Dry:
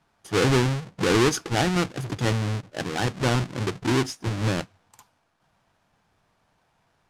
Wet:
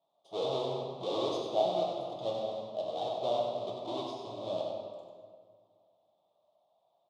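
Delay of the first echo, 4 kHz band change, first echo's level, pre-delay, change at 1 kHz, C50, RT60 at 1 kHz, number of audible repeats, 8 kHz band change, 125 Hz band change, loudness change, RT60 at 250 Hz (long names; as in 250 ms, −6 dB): 96 ms, −10.5 dB, −5.5 dB, 4 ms, −6.5 dB, 0.0 dB, 1.9 s, 1, below −20 dB, −24.5 dB, −10.0 dB, 2.1 s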